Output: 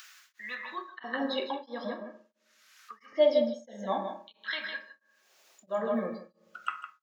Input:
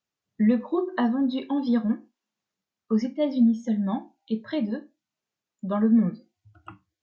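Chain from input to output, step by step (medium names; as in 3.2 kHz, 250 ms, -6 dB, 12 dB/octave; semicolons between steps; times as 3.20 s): 1.85–3.08 s: low-pass that closes with the level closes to 2.5 kHz, closed at -24 dBFS; peaking EQ 560 Hz -8 dB 2.5 oct; in parallel at -2 dB: upward compressor, threshold -23 dBFS; on the sum: LFO high-pass square 0.48 Hz 560–1500 Hz; delay 157 ms -8 dB; on a send at -6 dB: reverberation RT60 0.90 s, pre-delay 3 ms; on the sum: tremolo of two beating tones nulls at 1.5 Hz; trim -1 dB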